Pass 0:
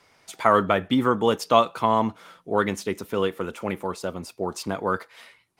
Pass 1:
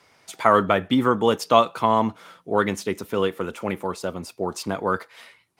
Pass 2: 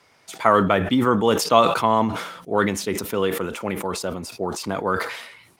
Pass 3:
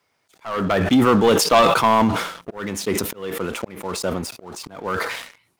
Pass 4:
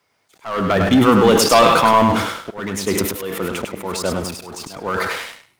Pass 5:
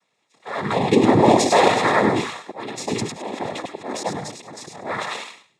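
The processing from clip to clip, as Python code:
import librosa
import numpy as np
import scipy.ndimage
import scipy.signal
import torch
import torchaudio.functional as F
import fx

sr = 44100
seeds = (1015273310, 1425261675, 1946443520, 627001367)

y1 = scipy.signal.sosfilt(scipy.signal.butter(2, 55.0, 'highpass', fs=sr, output='sos'), x)
y1 = y1 * 10.0 ** (1.5 / 20.0)
y2 = fx.sustainer(y1, sr, db_per_s=61.0)
y3 = fx.leveller(y2, sr, passes=3)
y3 = fx.auto_swell(y3, sr, attack_ms=516.0)
y3 = fx.quant_dither(y3, sr, seeds[0], bits=12, dither='none')
y3 = y3 * 10.0 ** (-5.5 / 20.0)
y4 = fx.echo_feedback(y3, sr, ms=101, feedback_pct=17, wet_db=-5.0)
y4 = y4 * 10.0 ** (2.0 / 20.0)
y5 = fx.env_flanger(y4, sr, rest_ms=7.0, full_db=-12.0)
y5 = fx.noise_vocoder(y5, sr, seeds[1], bands=6)
y5 = fx.notch_comb(y5, sr, f0_hz=1500.0)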